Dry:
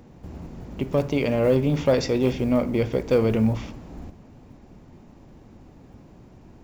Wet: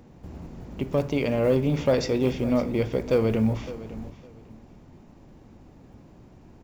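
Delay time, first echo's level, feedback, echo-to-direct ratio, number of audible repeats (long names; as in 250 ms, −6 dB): 558 ms, −16.0 dB, 20%, −16.0 dB, 2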